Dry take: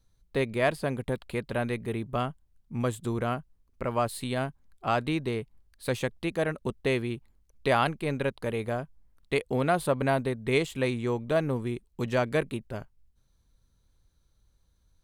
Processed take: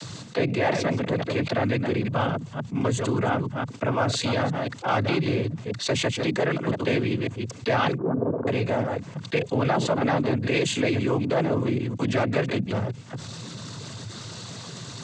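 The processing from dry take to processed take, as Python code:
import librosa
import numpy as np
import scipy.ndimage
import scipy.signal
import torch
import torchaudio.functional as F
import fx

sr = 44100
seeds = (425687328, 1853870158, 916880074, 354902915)

y = fx.reverse_delay(x, sr, ms=173, wet_db=-13.0)
y = fx.cheby_ripple(y, sr, hz=1200.0, ripple_db=6, at=(7.97, 8.47))
y = fx.noise_vocoder(y, sr, seeds[0], bands=16)
y = fx.env_flatten(y, sr, amount_pct=70)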